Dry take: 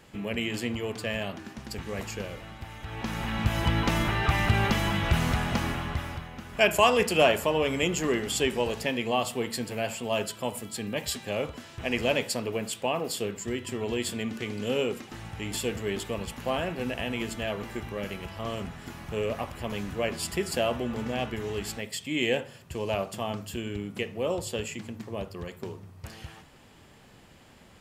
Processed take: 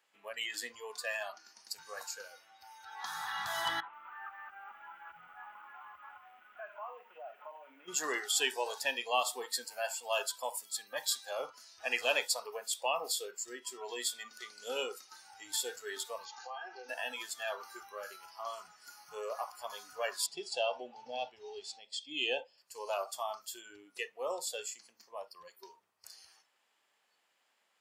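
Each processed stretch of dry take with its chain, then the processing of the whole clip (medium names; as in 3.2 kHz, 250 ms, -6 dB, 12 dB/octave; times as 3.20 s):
3.80–7.88 s: CVSD coder 16 kbps + compression 8:1, threshold -36 dBFS + bit-crushed delay 135 ms, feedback 80%, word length 9-bit, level -14.5 dB
16.25–16.89 s: comb 2.5 ms, depth 62% + compression 16:1, threshold -32 dBFS + brick-wall FIR low-pass 7.1 kHz
20.26–22.58 s: low-pass 4.9 kHz + high-order bell 1.5 kHz -9 dB 1.2 oct + tape noise reduction on one side only decoder only
whole clip: spectral noise reduction 17 dB; high-pass 810 Hz 12 dB/octave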